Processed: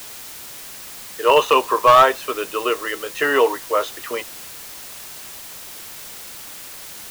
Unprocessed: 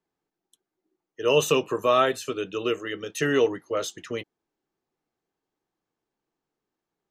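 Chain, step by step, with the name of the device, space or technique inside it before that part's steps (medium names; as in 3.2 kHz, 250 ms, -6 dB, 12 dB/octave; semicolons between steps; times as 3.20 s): drive-through speaker (band-pass 510–2800 Hz; peaking EQ 990 Hz +11 dB 0.45 oct; hard clipper -14 dBFS, distortion -15 dB; white noise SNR 15 dB); trim +8.5 dB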